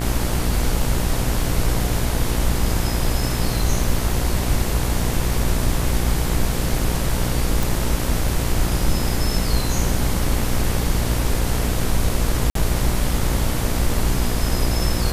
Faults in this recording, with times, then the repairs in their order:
buzz 60 Hz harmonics 38 -24 dBFS
7.63 s: pop
12.50–12.55 s: dropout 53 ms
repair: de-click; de-hum 60 Hz, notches 38; interpolate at 12.50 s, 53 ms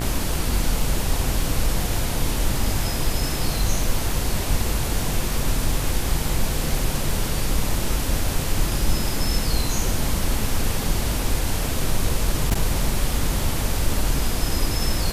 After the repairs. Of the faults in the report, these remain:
nothing left

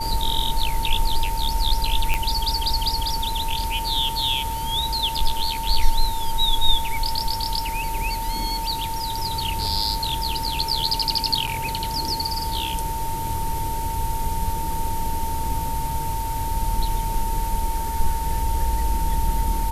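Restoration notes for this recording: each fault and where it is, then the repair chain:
whine 900 Hz -27 dBFS
2.14 s: pop -8 dBFS
11.47–11.48 s: dropout 6 ms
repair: de-click; band-stop 900 Hz, Q 30; interpolate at 11.47 s, 6 ms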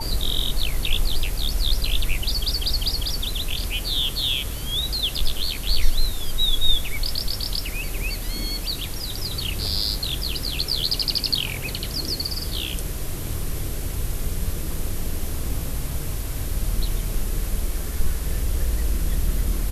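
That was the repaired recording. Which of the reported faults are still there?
nothing left

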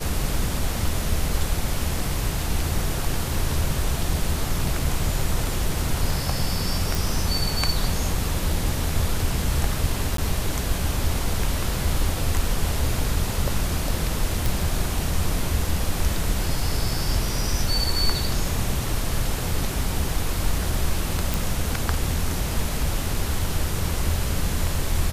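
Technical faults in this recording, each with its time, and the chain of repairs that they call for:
6.95 s: pop
10.17–10.18 s: dropout 13 ms
14.46 s: pop
21.34 s: pop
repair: de-click; interpolate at 10.17 s, 13 ms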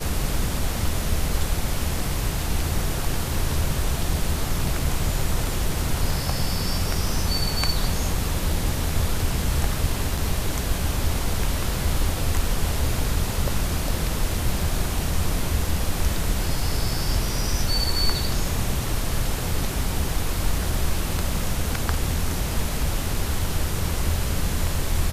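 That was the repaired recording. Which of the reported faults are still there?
nothing left

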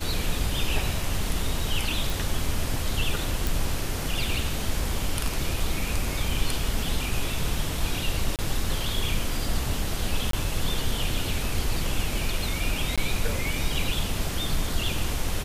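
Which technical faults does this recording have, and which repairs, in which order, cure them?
2.10 s: pop
3.47 s: pop
8.36–8.39 s: dropout 28 ms
10.31–10.33 s: dropout 23 ms
12.96–12.98 s: dropout 16 ms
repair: de-click; interpolate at 8.36 s, 28 ms; interpolate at 10.31 s, 23 ms; interpolate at 12.96 s, 16 ms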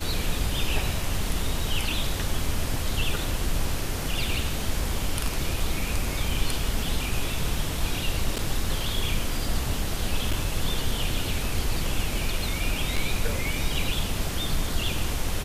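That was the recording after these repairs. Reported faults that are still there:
nothing left

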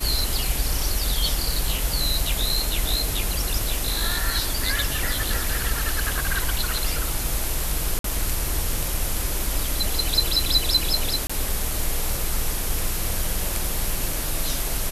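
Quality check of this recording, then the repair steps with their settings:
1.78 s: dropout 2.1 ms
7.99–8.04 s: dropout 53 ms
11.27–11.29 s: dropout 25 ms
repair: interpolate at 1.78 s, 2.1 ms; interpolate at 7.99 s, 53 ms; interpolate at 11.27 s, 25 ms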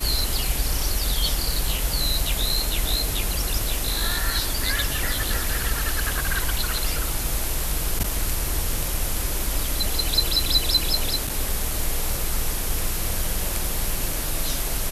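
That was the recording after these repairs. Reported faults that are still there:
nothing left

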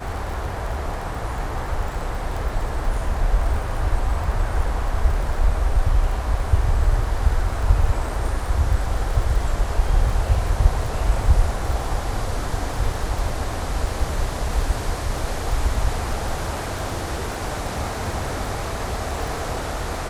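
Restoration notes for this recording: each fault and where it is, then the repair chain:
crackle 27 per s -28 dBFS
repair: de-click

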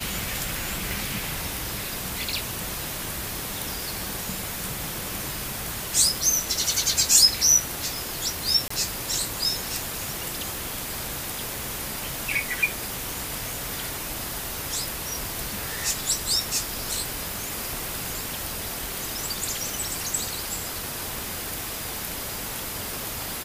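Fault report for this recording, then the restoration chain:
crackle 44 per s -35 dBFS
0.91 s: pop
8.68–8.70 s: dropout 24 ms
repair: de-click; interpolate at 8.68 s, 24 ms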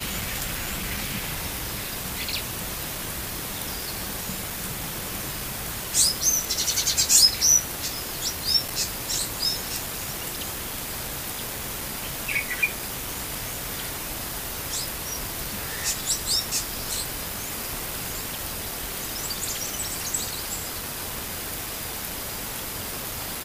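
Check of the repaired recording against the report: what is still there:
nothing left

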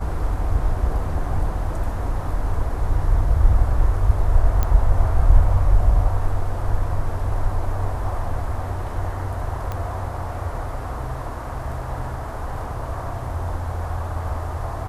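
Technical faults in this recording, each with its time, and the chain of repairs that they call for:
4.63 s: pop -8 dBFS
9.72 s: pop -15 dBFS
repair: de-click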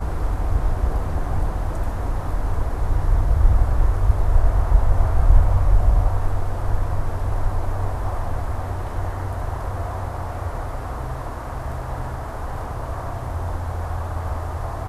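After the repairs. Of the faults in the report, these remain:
nothing left

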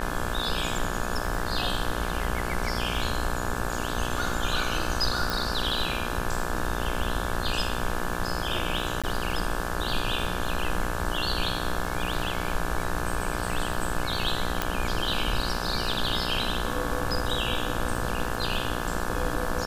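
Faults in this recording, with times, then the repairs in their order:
buzz 60 Hz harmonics 29 -32 dBFS
crackle 34 per s -35 dBFS
5.30 s: pop
9.02–9.04 s: dropout 16 ms
14.62 s: pop -9 dBFS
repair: de-click; de-hum 60 Hz, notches 29; interpolate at 9.02 s, 16 ms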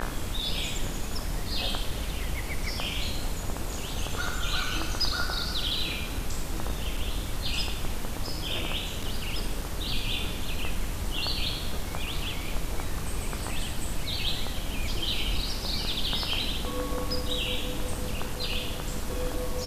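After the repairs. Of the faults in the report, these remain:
nothing left

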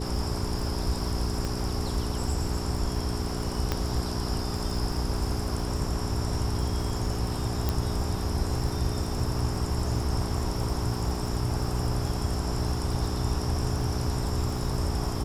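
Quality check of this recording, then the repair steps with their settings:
crackle 53 per s -35 dBFS
hum 60 Hz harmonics 7 -33 dBFS
1.45 s: pop
3.72 s: pop -12 dBFS
7.69 s: pop -12 dBFS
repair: de-click; de-hum 60 Hz, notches 7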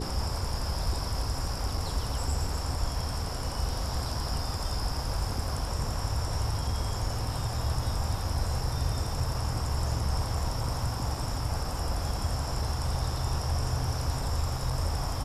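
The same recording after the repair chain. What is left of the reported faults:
3.72 s: pop

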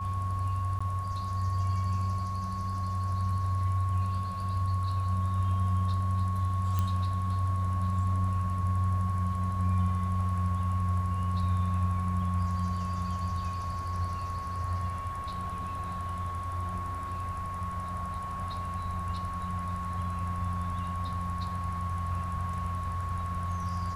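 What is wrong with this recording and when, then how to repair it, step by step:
whine 1.1 kHz -35 dBFS
0.79–0.81 s: dropout 15 ms
6.79 s: pop -17 dBFS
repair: de-click; band-stop 1.1 kHz, Q 30; interpolate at 0.79 s, 15 ms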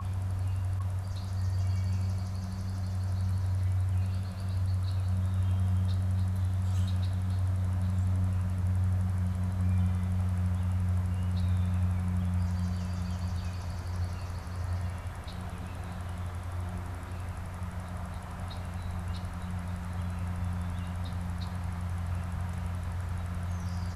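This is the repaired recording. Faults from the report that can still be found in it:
6.79 s: pop

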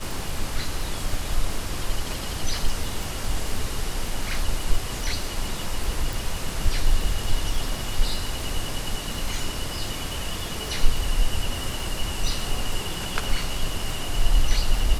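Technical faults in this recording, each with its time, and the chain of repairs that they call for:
crackle 60 per s -29 dBFS
6.13 s: pop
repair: de-click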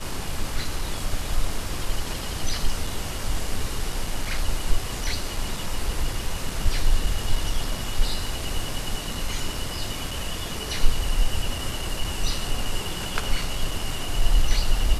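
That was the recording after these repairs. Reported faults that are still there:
nothing left

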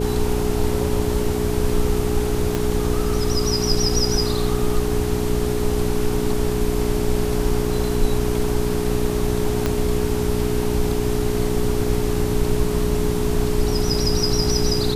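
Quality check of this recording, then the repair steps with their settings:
hum 60 Hz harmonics 6 -25 dBFS
whine 420 Hz -24 dBFS
2.55 s: pop -8 dBFS
9.66 s: pop -7 dBFS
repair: de-click; de-hum 60 Hz, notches 6; band-stop 420 Hz, Q 30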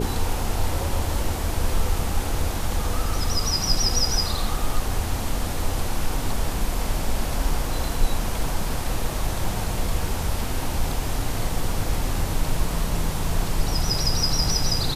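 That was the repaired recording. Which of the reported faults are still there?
2.55 s: pop
9.66 s: pop

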